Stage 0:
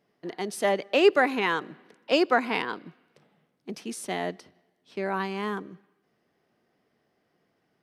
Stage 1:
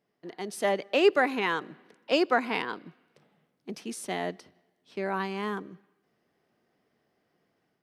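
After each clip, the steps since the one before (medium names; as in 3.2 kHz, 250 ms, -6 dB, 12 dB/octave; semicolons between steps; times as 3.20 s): level rider gain up to 5 dB; trim -6.5 dB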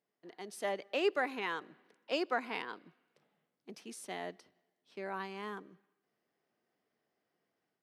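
bass shelf 180 Hz -9.5 dB; trim -8.5 dB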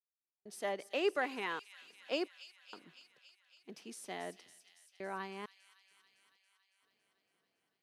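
trance gate "..xxxxx.xx..xx" 66 bpm -60 dB; feedback echo behind a high-pass 279 ms, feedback 72%, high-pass 3.3 kHz, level -9 dB; trim -1.5 dB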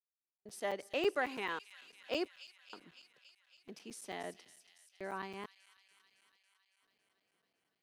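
crackling interface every 0.11 s, samples 256, zero, from 0.38 s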